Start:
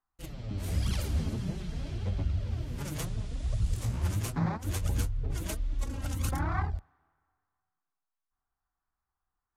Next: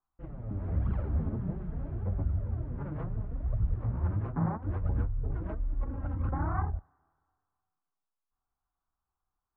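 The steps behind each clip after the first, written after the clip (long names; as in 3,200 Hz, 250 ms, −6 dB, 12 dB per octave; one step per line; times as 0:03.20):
low-pass filter 1,400 Hz 24 dB per octave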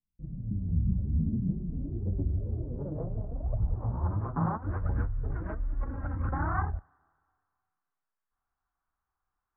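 low-pass filter sweep 190 Hz → 1,700 Hz, 0:01.09–0:04.98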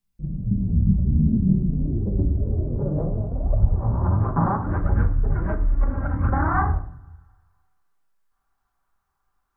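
rectangular room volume 760 cubic metres, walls furnished, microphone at 1.2 metres
level +8.5 dB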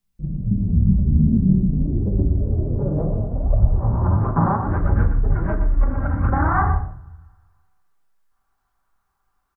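single-tap delay 121 ms −10.5 dB
level +2.5 dB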